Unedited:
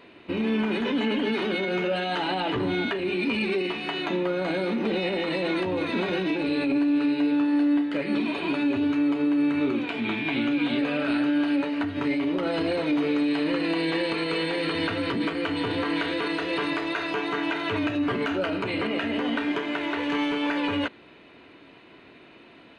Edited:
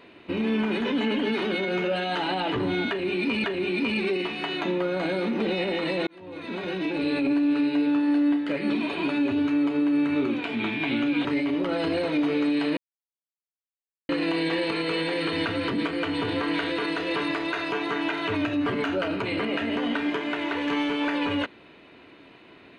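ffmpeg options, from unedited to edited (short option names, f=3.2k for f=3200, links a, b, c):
-filter_complex "[0:a]asplit=5[a][b][c][d][e];[a]atrim=end=3.442[f];[b]atrim=start=2.888:end=5.52,asetpts=PTS-STARTPTS,afade=t=out:st=2.628:d=0.004:c=hsin[g];[c]atrim=start=5.52:end=10.702,asetpts=PTS-STARTPTS,afade=t=in:d=0.99[h];[d]atrim=start=11.988:end=13.51,asetpts=PTS-STARTPTS,afade=t=out:st=1.518:d=0.004:c=hsin,apad=pad_dur=1.32[i];[e]atrim=start=13.51,asetpts=PTS-STARTPTS,afade=t=in:d=0.004:c=hsin[j];[g][h]concat=n=2:v=0:a=1[k];[f][k]acrossfade=d=0.004:c1=hsin:c2=hsin[l];[i][j]concat=n=2:v=0:a=1[m];[l][m]acrossfade=d=0.004:c1=hsin:c2=hsin"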